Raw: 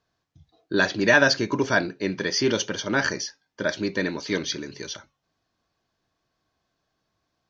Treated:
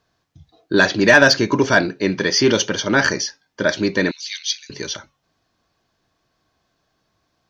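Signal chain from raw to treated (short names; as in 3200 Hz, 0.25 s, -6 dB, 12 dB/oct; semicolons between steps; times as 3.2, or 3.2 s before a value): 4.11–4.7 inverse Chebyshev high-pass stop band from 580 Hz, stop band 70 dB; soft clip -8 dBFS, distortion -21 dB; gain +7.5 dB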